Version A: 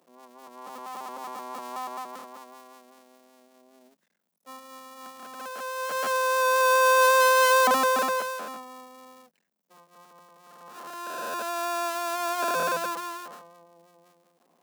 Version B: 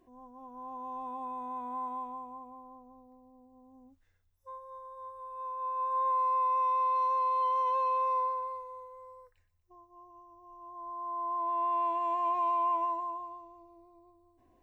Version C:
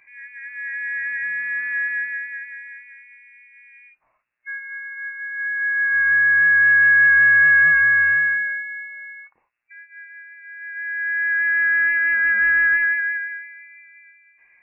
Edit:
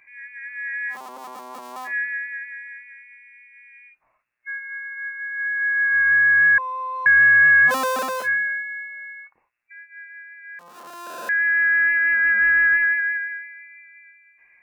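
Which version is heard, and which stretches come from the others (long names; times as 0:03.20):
C
0:00.93–0:01.89: punch in from A, crossfade 0.10 s
0:06.58–0:07.06: punch in from B
0:07.70–0:08.26: punch in from A, crossfade 0.06 s
0:10.59–0:11.29: punch in from A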